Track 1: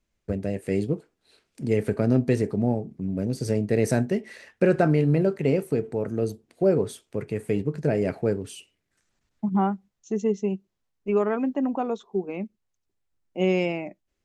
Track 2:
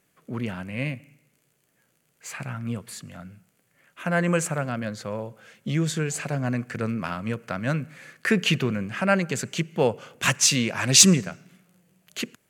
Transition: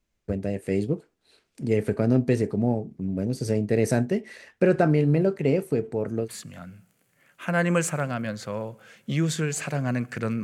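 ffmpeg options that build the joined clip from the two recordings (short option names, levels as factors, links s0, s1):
-filter_complex "[0:a]apad=whole_dur=10.43,atrim=end=10.43,atrim=end=6.29,asetpts=PTS-STARTPTS[s0];[1:a]atrim=start=2.77:end=7.01,asetpts=PTS-STARTPTS[s1];[s0][s1]acrossfade=d=0.1:c1=tri:c2=tri"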